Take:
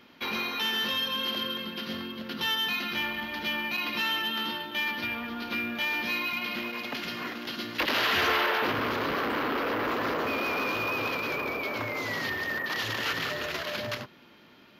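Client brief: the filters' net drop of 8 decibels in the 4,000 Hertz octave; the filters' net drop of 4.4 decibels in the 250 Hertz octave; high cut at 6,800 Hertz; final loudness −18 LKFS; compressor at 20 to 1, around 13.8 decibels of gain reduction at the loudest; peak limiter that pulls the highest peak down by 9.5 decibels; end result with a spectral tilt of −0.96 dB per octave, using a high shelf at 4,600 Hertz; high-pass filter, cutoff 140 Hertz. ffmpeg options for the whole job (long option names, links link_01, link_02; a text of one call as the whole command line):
ffmpeg -i in.wav -af "highpass=140,lowpass=6800,equalizer=frequency=250:width_type=o:gain=-5,equalizer=frequency=4000:width_type=o:gain=-9,highshelf=frequency=4600:gain=-5,acompressor=threshold=-38dB:ratio=20,volume=26dB,alimiter=limit=-10.5dB:level=0:latency=1" out.wav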